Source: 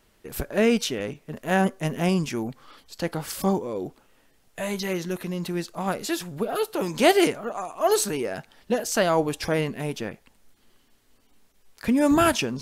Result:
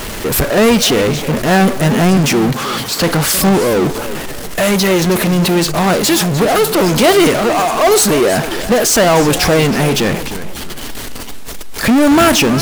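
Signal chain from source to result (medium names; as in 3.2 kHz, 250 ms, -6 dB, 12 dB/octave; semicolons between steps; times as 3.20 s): 2.17–3.01 s: high-pass 90 Hz 24 dB/octave; power-law waveshaper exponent 0.35; modulated delay 312 ms, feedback 36%, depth 215 cents, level -13 dB; trim +2 dB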